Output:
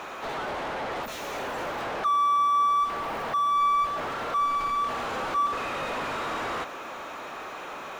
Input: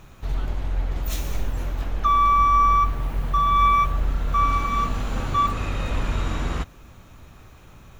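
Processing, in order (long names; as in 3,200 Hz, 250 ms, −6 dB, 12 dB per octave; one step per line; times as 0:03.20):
high-pass filter 400 Hz 12 dB per octave
mid-hump overdrive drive 29 dB, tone 1,100 Hz, clips at −23.5 dBFS
level +1.5 dB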